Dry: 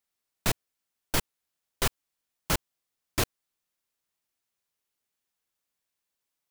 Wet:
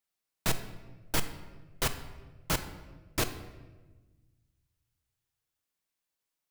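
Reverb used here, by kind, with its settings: simulated room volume 910 m³, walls mixed, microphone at 0.6 m; trim -3 dB

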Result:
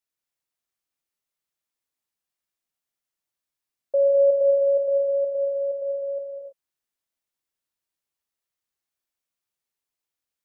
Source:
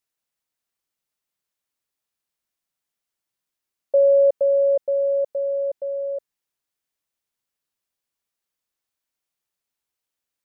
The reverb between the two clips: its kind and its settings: gated-style reverb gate 350 ms flat, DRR 1 dB; trim -5.5 dB

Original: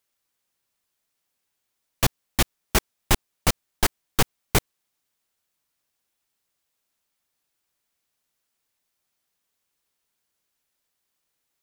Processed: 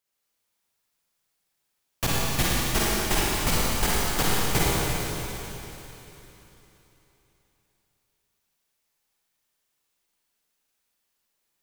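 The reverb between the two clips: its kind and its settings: Schroeder reverb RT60 3.5 s, DRR -7.5 dB; trim -6.5 dB

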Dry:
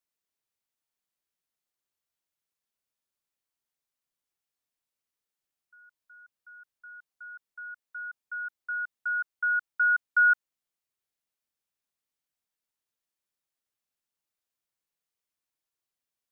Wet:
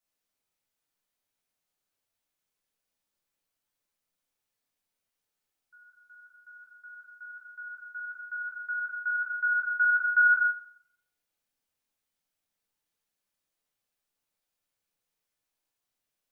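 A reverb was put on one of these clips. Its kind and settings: simulated room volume 160 m³, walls mixed, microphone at 1.5 m; trim -1 dB

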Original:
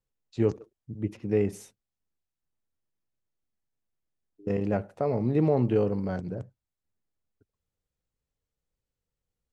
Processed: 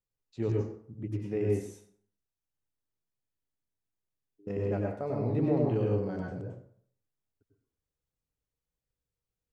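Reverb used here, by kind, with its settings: plate-style reverb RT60 0.55 s, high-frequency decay 0.7×, pre-delay 85 ms, DRR -1.5 dB; trim -8 dB

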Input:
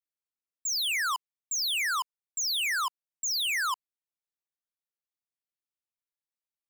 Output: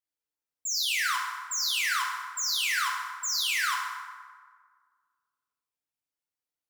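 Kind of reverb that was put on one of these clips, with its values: FDN reverb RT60 1.7 s, low-frequency decay 1×, high-frequency decay 0.55×, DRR -2.5 dB; trim -2.5 dB

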